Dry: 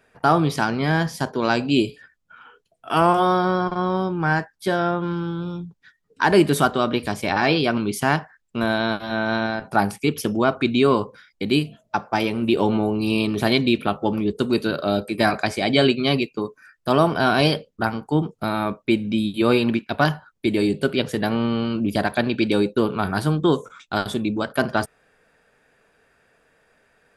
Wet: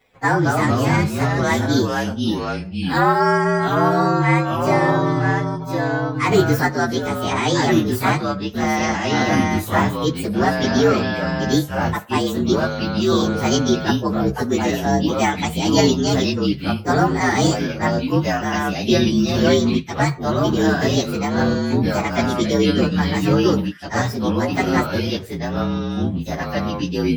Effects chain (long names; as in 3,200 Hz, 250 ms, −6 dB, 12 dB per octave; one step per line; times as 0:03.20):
partials spread apart or drawn together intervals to 115%
0:12.56–0:13.12: Butterworth high-pass 2,300 Hz
delay with pitch and tempo change per echo 177 ms, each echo −3 semitones, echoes 2
level +3 dB